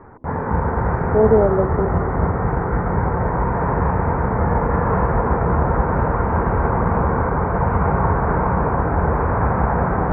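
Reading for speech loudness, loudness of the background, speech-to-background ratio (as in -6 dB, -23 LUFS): -18.5 LUFS, -19.5 LUFS, 1.0 dB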